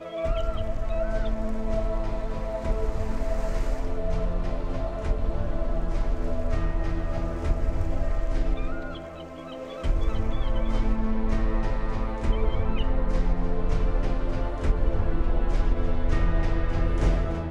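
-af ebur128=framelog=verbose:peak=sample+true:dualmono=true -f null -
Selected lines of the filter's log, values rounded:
Integrated loudness:
  I:         -26.8 LUFS
  Threshold: -36.8 LUFS
Loudness range:
  LRA:         2.9 LU
  Threshold: -47.1 LUFS
  LRA low:   -28.4 LUFS
  LRA high:  -25.4 LUFS
Sample peak:
  Peak:       -9.5 dBFS
True peak:
  Peak:       -9.5 dBFS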